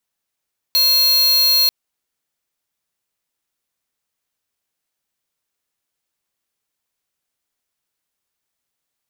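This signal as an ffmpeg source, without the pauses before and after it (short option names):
-f lavfi -i "aevalsrc='0.2*(2*lt(mod(4250*t,1),0.5)-1)':d=0.94:s=44100"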